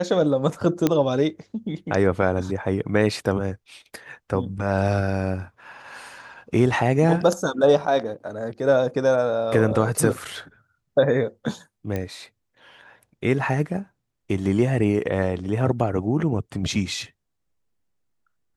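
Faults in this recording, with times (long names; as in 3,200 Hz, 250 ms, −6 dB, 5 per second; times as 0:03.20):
0:00.87: click −6 dBFS
0:11.96: click −15 dBFS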